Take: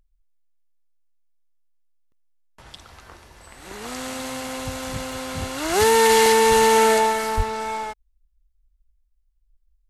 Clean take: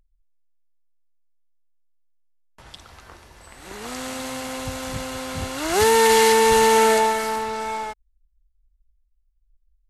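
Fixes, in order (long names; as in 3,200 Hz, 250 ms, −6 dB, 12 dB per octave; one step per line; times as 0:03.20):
0:07.36–0:07.48: high-pass filter 140 Hz 24 dB per octave
repair the gap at 0:02.12/0:02.72/0:05.12/0:06.26, 1.3 ms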